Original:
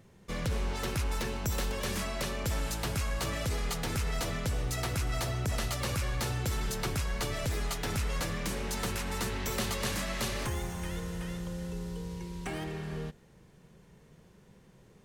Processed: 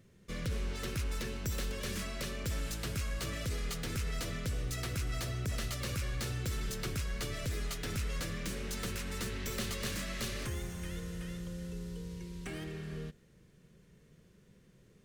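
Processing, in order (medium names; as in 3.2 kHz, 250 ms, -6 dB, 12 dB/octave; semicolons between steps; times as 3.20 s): tracing distortion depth 0.032 ms; peaking EQ 850 Hz -11.5 dB 0.68 oct; trim -3.5 dB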